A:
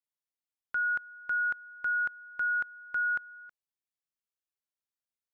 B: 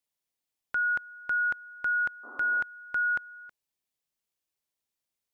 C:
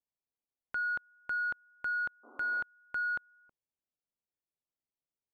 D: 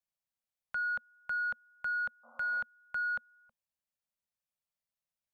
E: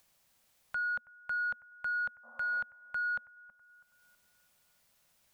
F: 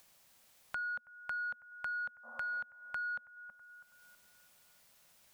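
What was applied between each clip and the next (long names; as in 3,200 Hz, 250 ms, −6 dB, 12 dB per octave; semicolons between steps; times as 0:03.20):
parametric band 1,400 Hz −5 dB; sound drawn into the spectrogram noise, 0:02.23–0:02.63, 230–1,400 Hz −57 dBFS; level +7 dB
adaptive Wiener filter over 25 samples; level −4 dB
elliptic band-stop filter 230–520 Hz
upward compression, threshold −52 dBFS; bucket-brigade delay 325 ms, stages 4,096, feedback 45%, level −21 dB
low-shelf EQ 130 Hz −5 dB; downward compressor 2.5 to 1, threshold −47 dBFS, peak gain reduction 10 dB; level +5 dB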